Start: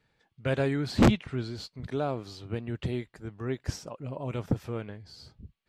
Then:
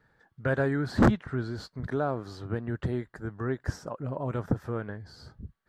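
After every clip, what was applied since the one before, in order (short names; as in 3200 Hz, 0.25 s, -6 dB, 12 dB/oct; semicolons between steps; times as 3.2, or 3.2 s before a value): resonant high shelf 2000 Hz -6.5 dB, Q 3; in parallel at +1.5 dB: compressor, threshold -36 dBFS, peak gain reduction 19.5 dB; on the sum: gain -2 dB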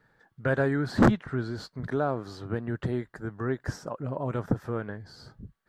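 bell 69 Hz -10 dB 0.61 oct; gain +1.5 dB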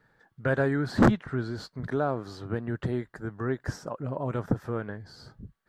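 nothing audible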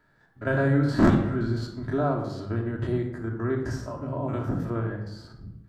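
stepped spectrum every 50 ms; shoebox room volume 2300 m³, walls furnished, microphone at 2.9 m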